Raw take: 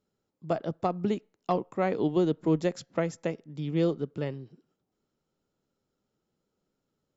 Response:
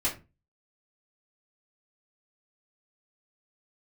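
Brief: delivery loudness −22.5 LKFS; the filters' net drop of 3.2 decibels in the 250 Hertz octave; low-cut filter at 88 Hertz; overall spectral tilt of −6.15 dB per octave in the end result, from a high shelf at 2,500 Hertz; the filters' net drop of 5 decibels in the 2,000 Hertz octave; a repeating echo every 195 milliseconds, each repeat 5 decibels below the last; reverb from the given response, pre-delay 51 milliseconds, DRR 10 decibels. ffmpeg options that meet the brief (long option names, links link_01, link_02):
-filter_complex "[0:a]highpass=88,equalizer=frequency=250:width_type=o:gain=-5,equalizer=frequency=2000:width_type=o:gain=-4.5,highshelf=frequency=2500:gain=-4,aecho=1:1:195|390|585|780|975|1170|1365:0.562|0.315|0.176|0.0988|0.0553|0.031|0.0173,asplit=2[link_01][link_02];[1:a]atrim=start_sample=2205,adelay=51[link_03];[link_02][link_03]afir=irnorm=-1:irlink=0,volume=-17.5dB[link_04];[link_01][link_04]amix=inputs=2:normalize=0,volume=8dB"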